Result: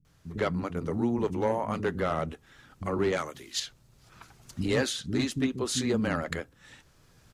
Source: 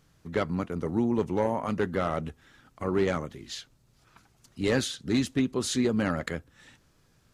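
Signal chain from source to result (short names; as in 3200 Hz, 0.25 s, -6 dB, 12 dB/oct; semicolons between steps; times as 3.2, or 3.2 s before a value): recorder AGC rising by 6.8 dB/s; 3.11–3.55 tilt +2.5 dB/oct; bands offset in time lows, highs 50 ms, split 250 Hz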